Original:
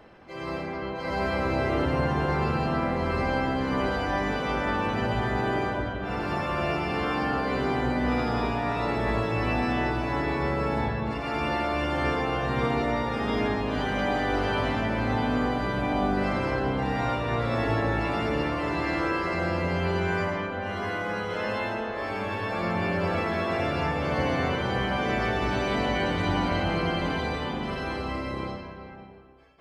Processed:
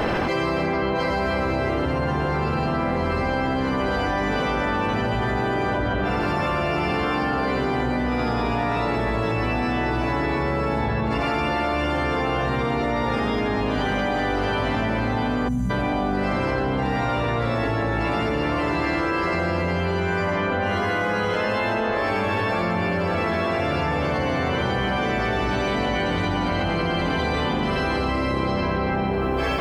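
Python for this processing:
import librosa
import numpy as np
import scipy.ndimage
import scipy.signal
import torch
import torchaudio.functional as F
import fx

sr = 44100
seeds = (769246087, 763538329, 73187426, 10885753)

y = fx.spec_box(x, sr, start_s=15.48, length_s=0.22, low_hz=270.0, high_hz=5600.0, gain_db=-23)
y = fx.env_flatten(y, sr, amount_pct=100)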